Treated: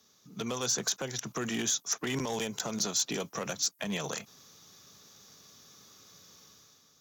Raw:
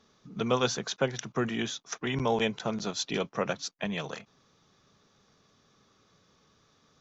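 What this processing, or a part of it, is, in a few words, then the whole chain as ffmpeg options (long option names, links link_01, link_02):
FM broadcast chain: -filter_complex "[0:a]highpass=60,dynaudnorm=framelen=120:gausssize=9:maxgain=9dB,acrossover=split=180|2000|5400[link_01][link_02][link_03][link_04];[link_01]acompressor=threshold=-36dB:ratio=4[link_05];[link_02]acompressor=threshold=-23dB:ratio=4[link_06];[link_03]acompressor=threshold=-41dB:ratio=4[link_07];[link_04]acompressor=threshold=-35dB:ratio=4[link_08];[link_05][link_06][link_07][link_08]amix=inputs=4:normalize=0,aemphasis=mode=production:type=50fm,alimiter=limit=-17.5dB:level=0:latency=1:release=78,asoftclip=type=hard:threshold=-21.5dB,lowpass=frequency=15000:width=0.5412,lowpass=frequency=15000:width=1.3066,aemphasis=mode=production:type=50fm,volume=-5.5dB"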